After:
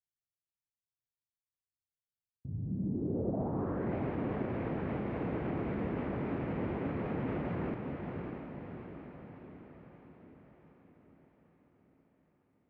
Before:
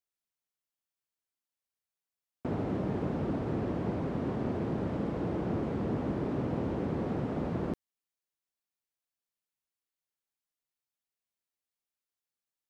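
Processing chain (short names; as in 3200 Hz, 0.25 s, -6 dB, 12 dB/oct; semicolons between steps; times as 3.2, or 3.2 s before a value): limiter -26.5 dBFS, peak gain reduction 5.5 dB; low-pass sweep 120 Hz -> 2300 Hz, 2.56–3.96; on a send: diffused feedback echo 0.619 s, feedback 56%, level -4.5 dB; on the sum: gain -3 dB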